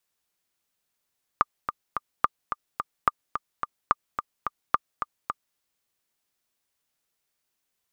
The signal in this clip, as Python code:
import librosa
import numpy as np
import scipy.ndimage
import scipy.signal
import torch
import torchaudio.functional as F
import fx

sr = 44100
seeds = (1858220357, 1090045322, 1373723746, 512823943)

y = fx.click_track(sr, bpm=216, beats=3, bars=5, hz=1200.0, accent_db=8.5, level_db=-5.5)